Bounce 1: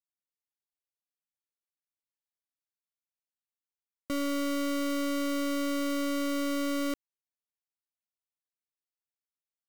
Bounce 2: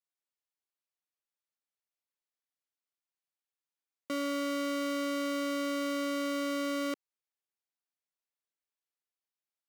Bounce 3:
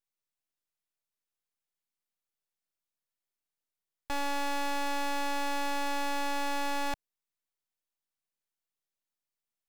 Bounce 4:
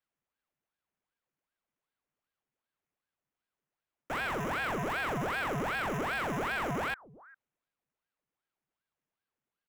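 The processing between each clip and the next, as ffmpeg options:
-af "highpass=300,highshelf=f=8200:g=-8"
-af "aeval=exprs='abs(val(0))':c=same,volume=1.33"
-filter_complex "[0:a]acrossover=split=420|640|1900[s0][s1][s2][s3];[s0]aecho=1:1:402:0.112[s4];[s3]acrusher=samples=10:mix=1:aa=0.000001[s5];[s4][s1][s2][s5]amix=inputs=4:normalize=0,aeval=exprs='val(0)*sin(2*PI*890*n/s+890*0.85/2.6*sin(2*PI*2.6*n/s))':c=same"

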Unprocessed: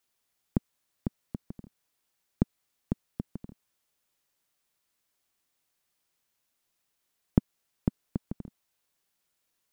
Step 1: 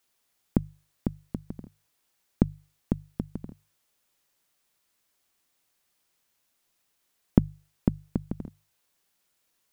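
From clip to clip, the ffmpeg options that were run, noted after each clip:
-af "bandreject=f=50:t=h:w=6,bandreject=f=100:t=h:w=6,bandreject=f=150:t=h:w=6,volume=1.68"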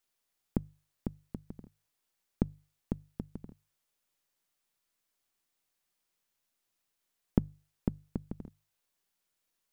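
-af "aeval=exprs='if(lt(val(0),0),0.708*val(0),val(0))':c=same,volume=0.447"

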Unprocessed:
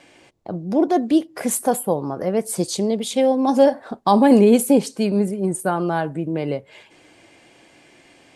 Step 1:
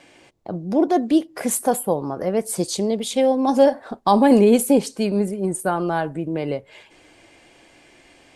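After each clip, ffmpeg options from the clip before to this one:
-af "asubboost=boost=3.5:cutoff=66"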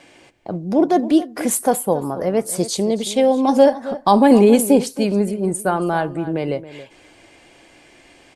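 -filter_complex "[0:a]asplit=2[s0][s1];[s1]adelay=274.1,volume=0.178,highshelf=f=4000:g=-6.17[s2];[s0][s2]amix=inputs=2:normalize=0,volume=1.33"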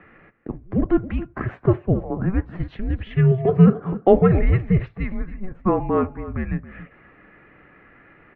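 -af "highpass=f=220:w=0.5412,highpass=f=220:w=1.3066,highpass=f=460:t=q:w=0.5412,highpass=f=460:t=q:w=1.307,lowpass=f=2500:t=q:w=0.5176,lowpass=f=2500:t=q:w=0.7071,lowpass=f=2500:t=q:w=1.932,afreqshift=-380,volume=1.19"

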